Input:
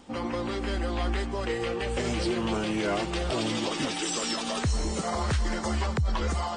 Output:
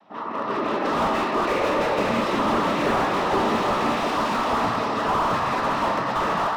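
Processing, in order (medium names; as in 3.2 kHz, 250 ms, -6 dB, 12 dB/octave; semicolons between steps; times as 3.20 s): tracing distortion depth 0.44 ms; cabinet simulation 320–3500 Hz, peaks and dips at 330 Hz -9 dB, 520 Hz -5 dB, 1.1 kHz +10 dB, 1.6 kHz -6 dB, 2.7 kHz -7 dB; noise-vocoded speech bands 12; treble shelf 2.3 kHz -5 dB, from 0.85 s +5.5 dB; reverberation RT60 1.9 s, pre-delay 5 ms, DRR 0.5 dB; level rider gain up to 10 dB; slew-rate limiter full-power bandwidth 100 Hz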